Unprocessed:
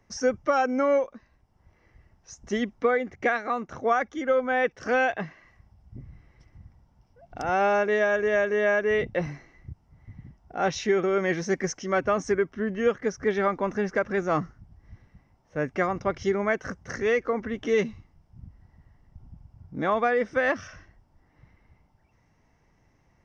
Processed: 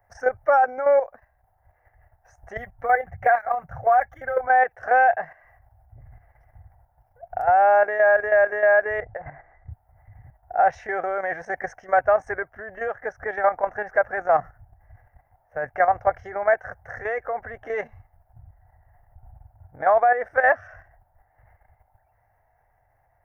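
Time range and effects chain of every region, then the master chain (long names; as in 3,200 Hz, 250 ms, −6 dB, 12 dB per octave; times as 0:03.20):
0:02.57–0:04.47: low shelf with overshoot 220 Hz +9.5 dB, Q 3 + phase shifter 1.8 Hz, delay 3.9 ms, feedback 34% + notch comb filter 210 Hz
0:09.00–0:09.71: low-pass filter 2,100 Hz 24 dB per octave + downward compressor 16 to 1, threshold −29 dBFS
whole clip: drawn EQ curve 110 Hz 0 dB, 200 Hz −22 dB, 370 Hz −13 dB, 730 Hz +13 dB, 1,100 Hz −3 dB, 1,700 Hz +6 dB, 2,400 Hz −10 dB, 3,800 Hz −23 dB, 7,400 Hz −17 dB, 11,000 Hz +11 dB; output level in coarse steps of 10 dB; level +4.5 dB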